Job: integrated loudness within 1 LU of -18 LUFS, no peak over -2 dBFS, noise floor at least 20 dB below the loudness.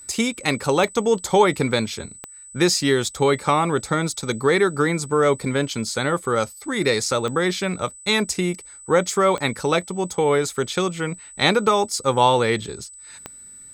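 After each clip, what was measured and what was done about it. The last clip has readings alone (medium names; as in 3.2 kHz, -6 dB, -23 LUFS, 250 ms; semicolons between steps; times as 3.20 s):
clicks found 5; steady tone 8 kHz; tone level -40 dBFS; loudness -21.0 LUFS; peak level -2.0 dBFS; loudness target -18.0 LUFS
-> de-click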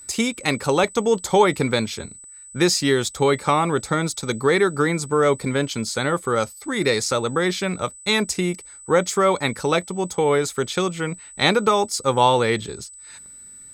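clicks found 0; steady tone 8 kHz; tone level -40 dBFS
-> band-stop 8 kHz, Q 30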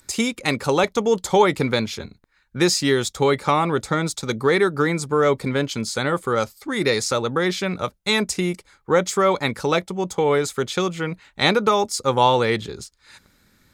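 steady tone not found; loudness -21.0 LUFS; peak level -2.5 dBFS; loudness target -18.0 LUFS
-> trim +3 dB; peak limiter -2 dBFS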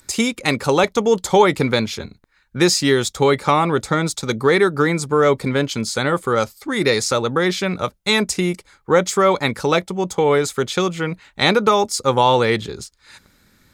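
loudness -18.0 LUFS; peak level -2.0 dBFS; noise floor -59 dBFS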